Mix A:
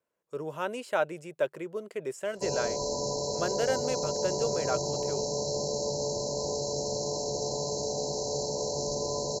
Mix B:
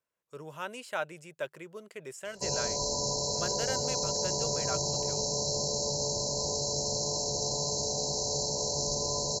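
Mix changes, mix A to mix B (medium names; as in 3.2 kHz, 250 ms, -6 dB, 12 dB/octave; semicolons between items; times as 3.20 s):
background +5.0 dB; master: add peaking EQ 400 Hz -9.5 dB 2.6 oct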